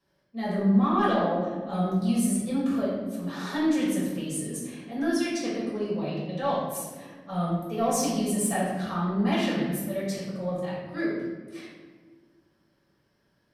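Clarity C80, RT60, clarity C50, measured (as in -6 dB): 3.0 dB, 1.6 s, 0.0 dB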